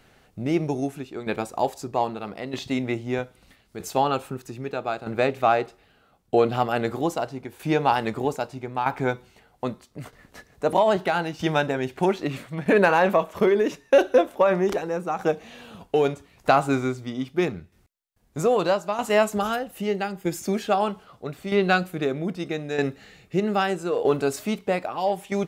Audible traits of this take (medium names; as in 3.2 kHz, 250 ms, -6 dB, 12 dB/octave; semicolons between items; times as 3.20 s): tremolo saw down 0.79 Hz, depth 65%